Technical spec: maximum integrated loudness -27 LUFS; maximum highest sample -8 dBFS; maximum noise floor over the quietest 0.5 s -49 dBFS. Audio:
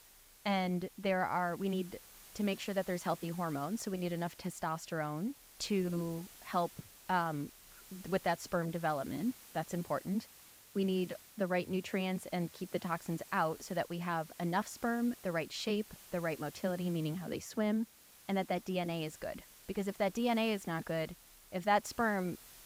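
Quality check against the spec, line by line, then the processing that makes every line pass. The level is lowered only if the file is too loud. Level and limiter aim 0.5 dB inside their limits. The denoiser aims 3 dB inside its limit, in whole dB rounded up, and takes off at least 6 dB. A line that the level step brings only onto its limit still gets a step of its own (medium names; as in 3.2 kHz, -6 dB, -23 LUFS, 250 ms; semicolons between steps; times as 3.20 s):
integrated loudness -36.5 LUFS: pass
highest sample -18.0 dBFS: pass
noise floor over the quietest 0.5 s -58 dBFS: pass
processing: none needed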